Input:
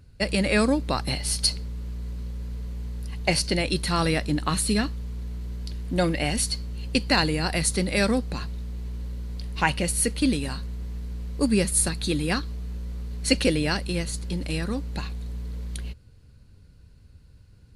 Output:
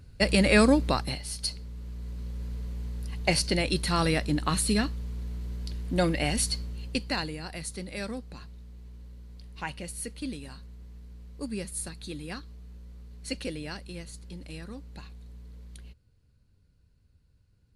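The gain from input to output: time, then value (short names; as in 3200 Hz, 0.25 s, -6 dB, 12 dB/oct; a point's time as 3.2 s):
0.86 s +1.5 dB
1.28 s -10 dB
2.42 s -2 dB
6.62 s -2 dB
7.43 s -13 dB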